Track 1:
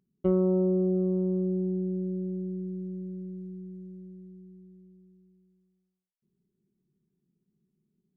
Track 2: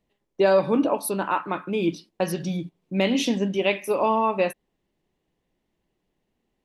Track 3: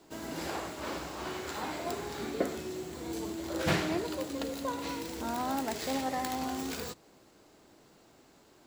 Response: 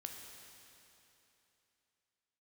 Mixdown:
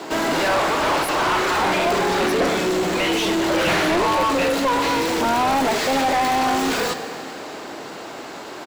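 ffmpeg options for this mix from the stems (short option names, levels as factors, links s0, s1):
-filter_complex "[0:a]adelay=1400,volume=0.2[s0];[1:a]highpass=980,volume=0.501[s1];[2:a]volume=1.33,asplit=2[s2][s3];[s3]volume=0.355[s4];[3:a]atrim=start_sample=2205[s5];[s4][s5]afir=irnorm=-1:irlink=0[s6];[s0][s1][s2][s6]amix=inputs=4:normalize=0,asplit=2[s7][s8];[s8]highpass=f=720:p=1,volume=50.1,asoftclip=type=tanh:threshold=0.282[s9];[s7][s9]amix=inputs=2:normalize=0,lowpass=f=2200:p=1,volume=0.501"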